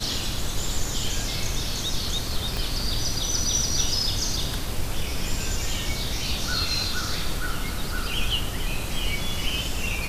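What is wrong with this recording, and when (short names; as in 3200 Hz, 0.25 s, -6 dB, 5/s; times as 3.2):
2.57 pop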